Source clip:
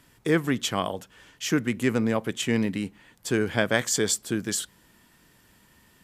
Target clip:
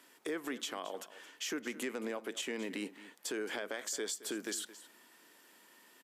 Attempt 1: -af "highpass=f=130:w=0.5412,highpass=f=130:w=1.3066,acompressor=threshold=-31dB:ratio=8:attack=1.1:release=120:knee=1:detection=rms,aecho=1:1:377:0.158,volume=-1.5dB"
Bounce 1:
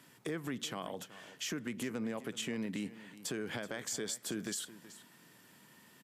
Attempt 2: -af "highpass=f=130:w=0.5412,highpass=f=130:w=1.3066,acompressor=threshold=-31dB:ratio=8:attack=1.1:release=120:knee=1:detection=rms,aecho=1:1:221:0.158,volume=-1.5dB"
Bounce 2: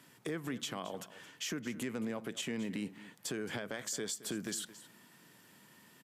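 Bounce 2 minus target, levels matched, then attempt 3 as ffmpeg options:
125 Hz band +13.5 dB
-af "highpass=f=290:w=0.5412,highpass=f=290:w=1.3066,acompressor=threshold=-31dB:ratio=8:attack=1.1:release=120:knee=1:detection=rms,aecho=1:1:221:0.158,volume=-1.5dB"

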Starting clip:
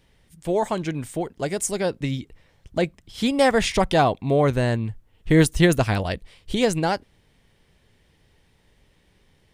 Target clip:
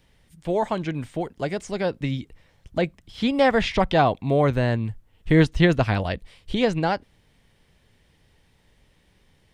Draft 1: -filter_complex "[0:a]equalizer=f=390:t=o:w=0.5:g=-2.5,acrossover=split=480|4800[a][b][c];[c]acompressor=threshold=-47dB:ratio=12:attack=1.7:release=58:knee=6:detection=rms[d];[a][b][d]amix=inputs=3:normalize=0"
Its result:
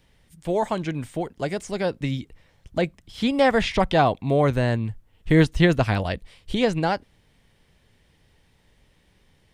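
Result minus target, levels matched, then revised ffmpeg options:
compressor: peak gain reduction -8 dB
-filter_complex "[0:a]equalizer=f=390:t=o:w=0.5:g=-2.5,acrossover=split=480|4800[a][b][c];[c]acompressor=threshold=-56dB:ratio=12:attack=1.7:release=58:knee=6:detection=rms[d];[a][b][d]amix=inputs=3:normalize=0"

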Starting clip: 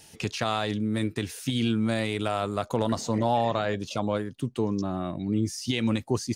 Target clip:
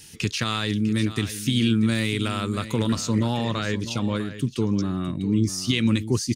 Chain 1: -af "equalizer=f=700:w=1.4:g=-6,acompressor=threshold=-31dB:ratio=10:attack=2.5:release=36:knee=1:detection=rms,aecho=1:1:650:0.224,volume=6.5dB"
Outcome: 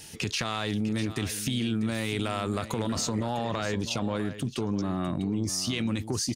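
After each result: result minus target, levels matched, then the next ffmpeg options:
compressor: peak gain reduction +12.5 dB; 500 Hz band +2.5 dB
-af "equalizer=f=700:w=1.4:g=-6,aecho=1:1:650:0.224,volume=6.5dB"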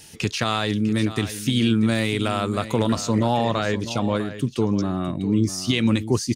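500 Hz band +3.5 dB
-af "equalizer=f=700:w=1.4:g=-17.5,aecho=1:1:650:0.224,volume=6.5dB"

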